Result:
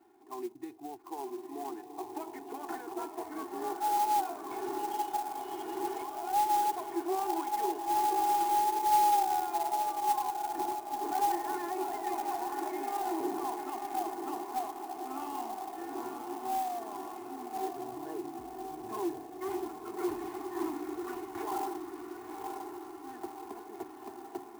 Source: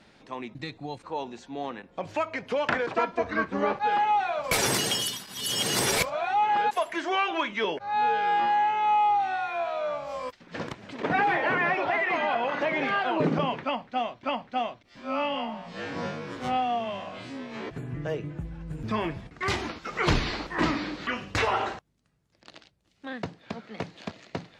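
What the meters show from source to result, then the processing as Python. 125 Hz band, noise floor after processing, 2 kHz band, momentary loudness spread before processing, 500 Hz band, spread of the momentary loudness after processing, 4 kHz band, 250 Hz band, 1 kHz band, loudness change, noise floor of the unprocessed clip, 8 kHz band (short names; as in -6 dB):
under -20 dB, -48 dBFS, -19.0 dB, 14 LU, -8.0 dB, 14 LU, -16.0 dB, -5.5 dB, -3.5 dB, -6.5 dB, -59 dBFS, -9.0 dB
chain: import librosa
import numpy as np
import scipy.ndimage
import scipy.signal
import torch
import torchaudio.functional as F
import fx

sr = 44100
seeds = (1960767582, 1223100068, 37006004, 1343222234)

p1 = x + 0.81 * np.pad(x, (int(2.8 * sr / 1000.0), 0))[:len(x)]
p2 = fx.rider(p1, sr, range_db=5, speed_s=0.5)
p3 = p1 + (p2 * librosa.db_to_amplitude(-1.5))
p4 = 10.0 ** (-15.5 / 20.0) * np.tanh(p3 / 10.0 ** (-15.5 / 20.0))
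p5 = fx.double_bandpass(p4, sr, hz=550.0, octaves=1.2)
p6 = p5 + fx.echo_diffused(p5, sr, ms=1015, feedback_pct=59, wet_db=-5.0, dry=0)
p7 = fx.clock_jitter(p6, sr, seeds[0], jitter_ms=0.038)
y = p7 * librosa.db_to_amplitude(-6.5)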